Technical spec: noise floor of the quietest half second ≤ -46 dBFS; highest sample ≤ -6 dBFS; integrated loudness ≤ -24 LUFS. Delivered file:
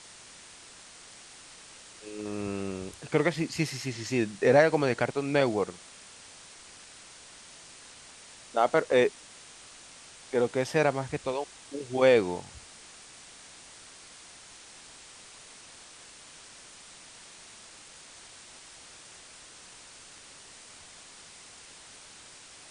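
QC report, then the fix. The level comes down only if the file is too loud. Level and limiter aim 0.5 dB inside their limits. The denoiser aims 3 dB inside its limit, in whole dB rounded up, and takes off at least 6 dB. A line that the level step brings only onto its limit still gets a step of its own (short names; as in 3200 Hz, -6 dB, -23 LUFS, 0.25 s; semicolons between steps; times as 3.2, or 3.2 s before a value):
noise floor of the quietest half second -50 dBFS: OK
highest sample -8.0 dBFS: OK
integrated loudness -27.5 LUFS: OK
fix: none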